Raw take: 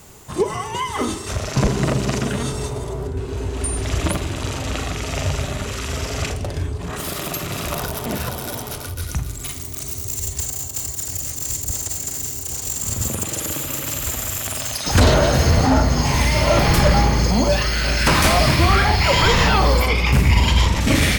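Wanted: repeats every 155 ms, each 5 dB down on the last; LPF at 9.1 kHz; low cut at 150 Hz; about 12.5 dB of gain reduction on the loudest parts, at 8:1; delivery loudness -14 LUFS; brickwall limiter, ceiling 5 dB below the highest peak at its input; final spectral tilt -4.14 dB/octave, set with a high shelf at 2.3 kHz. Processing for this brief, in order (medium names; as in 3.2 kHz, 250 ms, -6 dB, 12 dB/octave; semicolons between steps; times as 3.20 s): high-pass 150 Hz; low-pass 9.1 kHz; treble shelf 2.3 kHz -8.5 dB; compression 8:1, threshold -27 dBFS; peak limiter -22 dBFS; feedback delay 155 ms, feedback 56%, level -5 dB; trim +17 dB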